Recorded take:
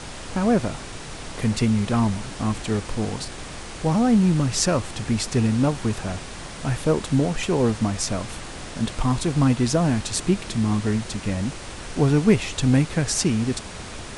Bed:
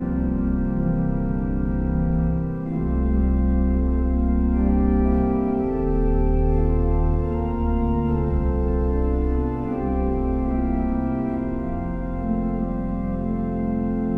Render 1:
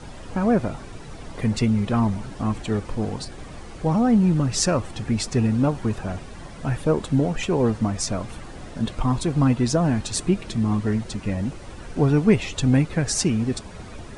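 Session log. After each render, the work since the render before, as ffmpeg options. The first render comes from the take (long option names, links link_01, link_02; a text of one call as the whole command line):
ffmpeg -i in.wav -af "afftdn=noise_reduction=11:noise_floor=-36" out.wav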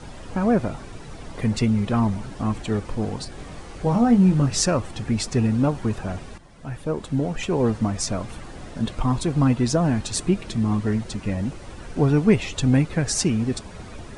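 ffmpeg -i in.wav -filter_complex "[0:a]asettb=1/sr,asplit=3[link_01][link_02][link_03];[link_01]atrim=end=3.334[link_04];[link_02]atrim=start=3.33:end=4.62,asetpts=PTS-STARTPTS,afade=type=in:duration=0.004:curve=qsin,afade=type=out:start_time=1.286:duration=0.004:curve=qsin,asplit=2[link_05][link_06];[link_06]adelay=21,volume=-6dB[link_07];[link_05][link_07]amix=inputs=2:normalize=0,atrim=end_sample=56889[link_08];[link_03]atrim=start=4.616[link_09];[link_04][link_08]acrossfade=duration=0.004:curve1=hsin:curve2=qsin[link_10];[link_10][link_09]acrossfade=duration=0.004:curve1=qsin:curve2=hsin,asplit=2[link_11][link_12];[link_11]atrim=end=6.38,asetpts=PTS-STARTPTS,afade=type=out:start_time=6.376:duration=0.004:curve=hsin:silence=0.223872[link_13];[link_12]atrim=start=6.38,asetpts=PTS-STARTPTS,afade=type=in:duration=1.33:silence=0.223872[link_14];[link_13][link_14]concat=n=2:v=0:a=1" out.wav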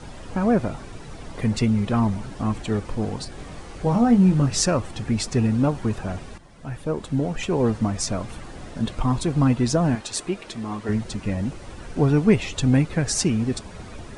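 ffmpeg -i in.wav -filter_complex "[0:a]asettb=1/sr,asplit=3[link_01][link_02][link_03];[link_01]atrim=end=9.954[link_04];[link_02]atrim=start=9.95:end=10.89,asetpts=PTS-STARTPTS,afade=type=in:duration=0.004:curve=qsin,afade=type=out:start_time=0.936:duration=0.004:curve=qsin,bass=frequency=250:gain=-14,treble=frequency=4000:gain=-2[link_05];[link_03]atrim=start=10.886[link_06];[link_04][link_05]acrossfade=duration=0.004:curve1=hsin:curve2=qsin[link_07];[link_07][link_06]acrossfade=duration=0.004:curve1=qsin:curve2=hsin" out.wav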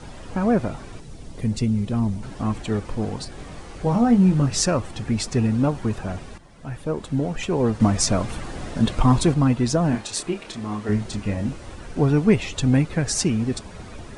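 ffmpeg -i in.wav -filter_complex "[0:a]asettb=1/sr,asplit=3[link_01][link_02][link_03];[link_01]atrim=end=1.004[link_04];[link_02]atrim=start=1:end=2.23,asetpts=PTS-STARTPTS,afade=type=in:duration=0.004:curve=qsin,afade=type=out:start_time=1.226:duration=0.004:curve=qsin,equalizer=frequency=1300:width_type=o:width=2.7:gain=-10.5[link_05];[link_03]atrim=start=2.226[link_06];[link_04][link_05]acrossfade=duration=0.004:curve1=hsin:curve2=qsin[link_07];[link_07][link_06]acrossfade=duration=0.004:curve1=qsin:curve2=hsin,asettb=1/sr,asplit=3[link_08][link_09][link_10];[link_08]atrim=end=9.894[link_11];[link_09]atrim=start=9.89:end=11.76,asetpts=PTS-STARTPTS,afade=type=in:duration=0.004:curve=qsin,afade=type=out:start_time=1.866:duration=0.004:curve=qsin,asplit=2[link_12][link_13];[link_13]adelay=29,volume=-6.5dB[link_14];[link_12][link_14]amix=inputs=2:normalize=0,atrim=end_sample=82467[link_15];[link_10]atrim=start=11.756[link_16];[link_11][link_15]acrossfade=duration=0.004:curve1=hsin:curve2=qsin[link_17];[link_17][link_16]acrossfade=duration=0.004:curve1=qsin:curve2=hsin,asplit=3[link_18][link_19][link_20];[link_18]atrim=end=7.802[link_21];[link_19]atrim=start=7.798:end=9.342,asetpts=PTS-STARTPTS,volume=5.5dB[link_22];[link_20]atrim=start=9.338[link_23];[link_21][link_22]acrossfade=duration=0.004:curve1=hsin:curve2=hsin[link_24];[link_24][link_23]acrossfade=duration=0.004:curve1=hsin:curve2=hsin" out.wav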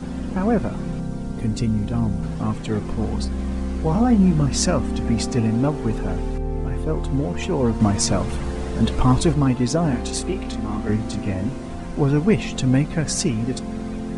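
ffmpeg -i in.wav -i bed.wav -filter_complex "[1:a]volume=-6dB[link_01];[0:a][link_01]amix=inputs=2:normalize=0" out.wav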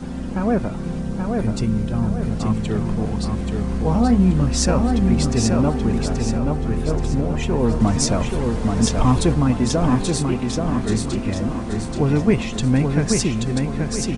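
ffmpeg -i in.wav -af "aecho=1:1:830|1660|2490|3320|4150:0.631|0.271|0.117|0.0502|0.0216" out.wav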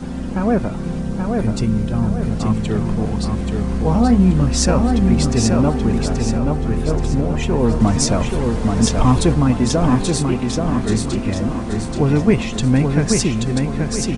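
ffmpeg -i in.wav -af "volume=2.5dB,alimiter=limit=-1dB:level=0:latency=1" out.wav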